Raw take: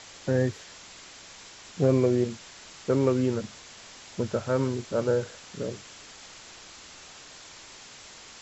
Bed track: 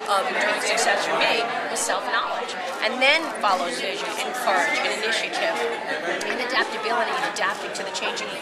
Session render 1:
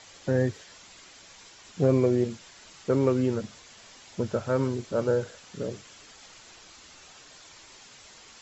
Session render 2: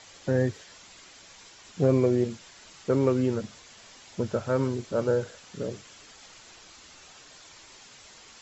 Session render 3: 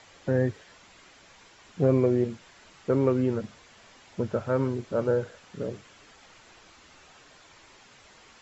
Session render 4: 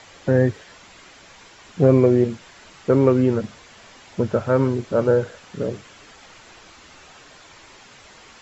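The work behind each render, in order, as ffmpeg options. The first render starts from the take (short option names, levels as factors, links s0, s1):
-af "afftdn=nr=6:nf=-48"
-af anull
-filter_complex "[0:a]acrossover=split=2900[s0][s1];[s1]acompressor=threshold=0.00112:ratio=4:attack=1:release=60[s2];[s0][s2]amix=inputs=2:normalize=0"
-af "volume=2.37"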